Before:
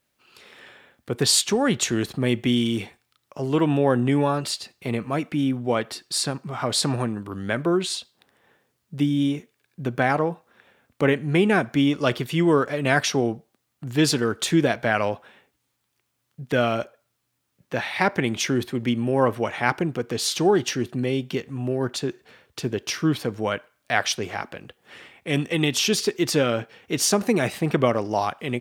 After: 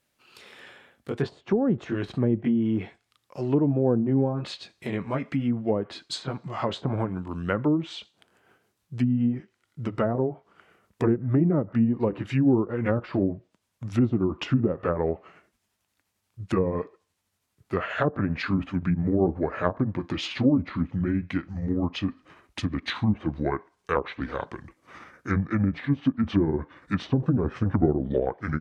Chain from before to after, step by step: pitch bend over the whole clip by -8 st starting unshifted; low-pass that closes with the level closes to 500 Hz, closed at -18 dBFS

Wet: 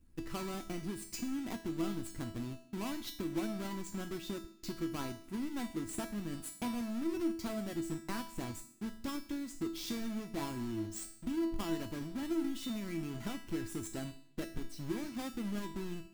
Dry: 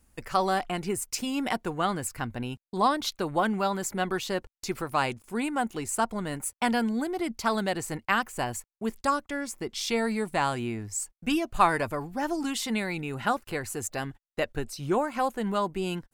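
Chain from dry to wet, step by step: square wave that keeps the level; resonant low shelf 400 Hz +8.5 dB, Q 1.5; compression, threshold -21 dBFS, peak gain reduction 12.5 dB; feedback comb 330 Hz, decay 0.54 s, mix 90%; on a send: reverberation RT60 0.75 s, pre-delay 3 ms, DRR 13.5 dB; on the sum: trim +2 dB

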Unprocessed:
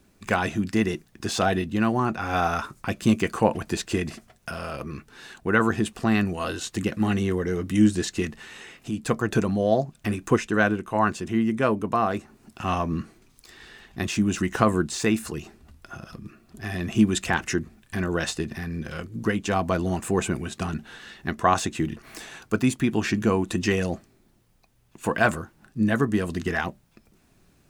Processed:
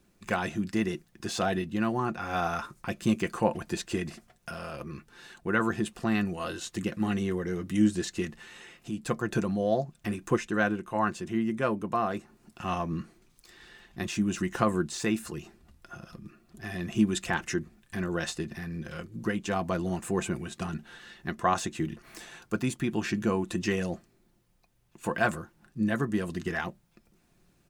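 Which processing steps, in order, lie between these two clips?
comb 5.7 ms, depth 32%; trim -6 dB

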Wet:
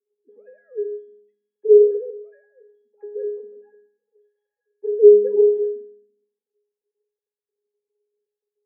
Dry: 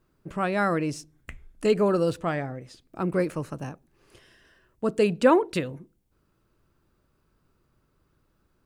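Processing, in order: formants replaced by sine waves; elliptic high-pass 240 Hz, stop band 40 dB; resonant low shelf 660 Hz +12 dB, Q 3; pitch-class resonator G#, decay 0.61 s; on a send: reverberation RT60 0.65 s, pre-delay 3 ms, DRR 8.5 dB

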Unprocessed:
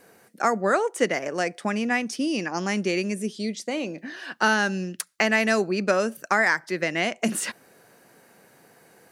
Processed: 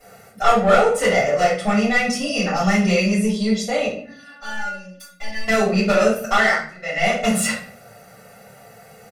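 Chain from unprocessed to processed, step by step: comb 1.5 ms, depth 98%; 6.38–7.08 s: dip -22 dB, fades 0.30 s; saturation -18 dBFS, distortion -9 dB; 3.86–5.48 s: inharmonic resonator 280 Hz, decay 0.22 s, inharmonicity 0.002; reverberation RT60 0.50 s, pre-delay 3 ms, DRR -14 dB; trim -7 dB

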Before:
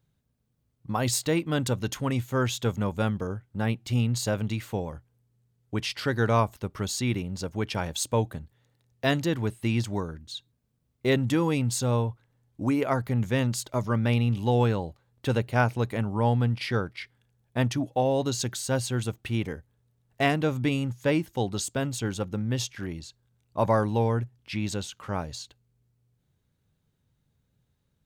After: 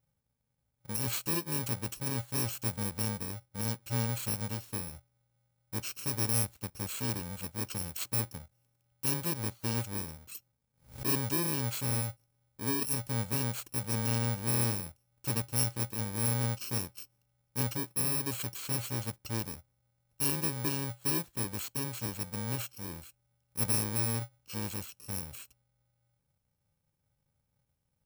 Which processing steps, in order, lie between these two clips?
bit-reversed sample order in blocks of 64 samples; 10.27–11.19 s: swell ahead of each attack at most 150 dB/s; trim -7 dB

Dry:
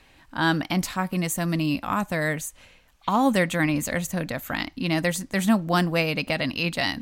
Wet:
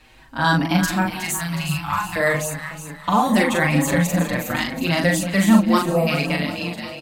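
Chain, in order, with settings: fade out at the end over 0.97 s; 1.05–2.16 s: elliptic band-stop 150–860 Hz; 5.78–6.07 s: time-frequency box 1.3–7.5 kHz -21 dB; doubling 41 ms -3 dB; echo whose repeats swap between lows and highs 183 ms, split 800 Hz, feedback 71%, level -7 dB; endless flanger 6.1 ms +0.88 Hz; trim +6 dB

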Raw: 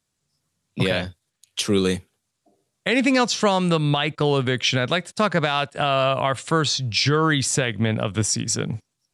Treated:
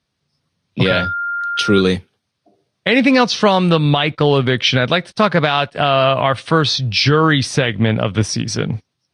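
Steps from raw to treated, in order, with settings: 0.87–1.80 s: whistle 1.4 kHz -25 dBFS; Savitzky-Golay filter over 15 samples; trim +6.5 dB; Vorbis 48 kbps 48 kHz

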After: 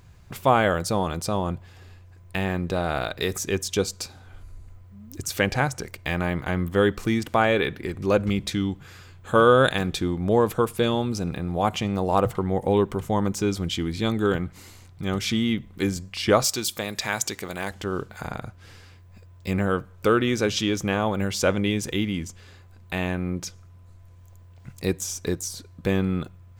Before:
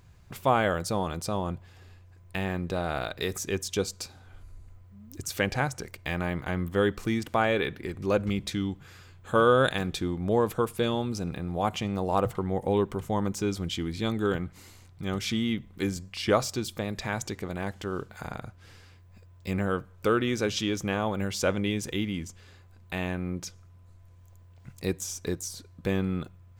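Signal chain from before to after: 16.44–17.71 s: tilt EQ +2.5 dB/octave; trim +4.5 dB

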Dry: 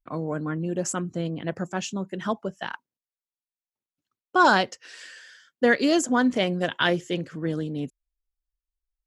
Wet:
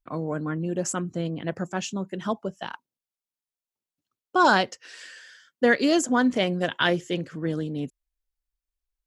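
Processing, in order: 2.19–4.49 s: peaking EQ 1.8 kHz -5.5 dB 0.77 oct

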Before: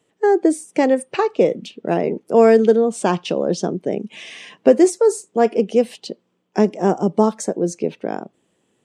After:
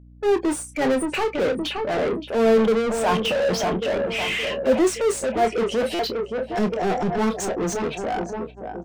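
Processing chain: expander on every frequency bin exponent 1.5; dynamic bell 1.1 kHz, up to -4 dB, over -29 dBFS, Q 0.77; time-frequency box 3.00–5.45 s, 520–3300 Hz +7 dB; filtered feedback delay 570 ms, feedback 43%, low-pass 2.1 kHz, level -14 dB; gate -45 dBFS, range -24 dB; overdrive pedal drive 27 dB, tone 3.1 kHz, clips at -16.5 dBFS; doubling 27 ms -9.5 dB; hum 60 Hz, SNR 25 dB; transient shaper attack -5 dB, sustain 0 dB; buffer glitch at 5.94 s, samples 256, times 8

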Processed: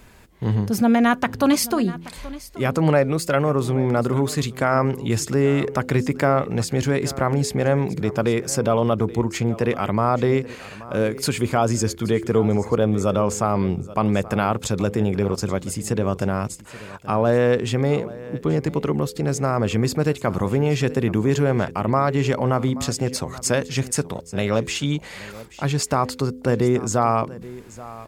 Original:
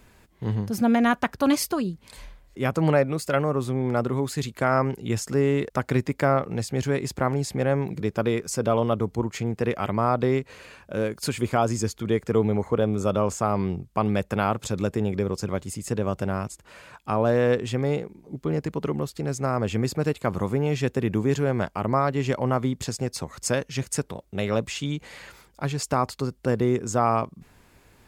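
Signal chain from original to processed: de-hum 84.57 Hz, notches 6; in parallel at 0 dB: peak limiter -19 dBFS, peak gain reduction 10.5 dB; on the sum: delay 829 ms -18 dB

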